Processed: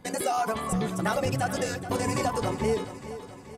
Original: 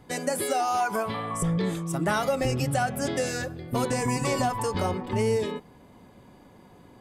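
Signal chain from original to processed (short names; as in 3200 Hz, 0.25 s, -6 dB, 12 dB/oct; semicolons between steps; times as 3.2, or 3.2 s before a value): granular stretch 0.51×, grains 28 ms; on a send: feedback echo 0.428 s, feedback 54%, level -13 dB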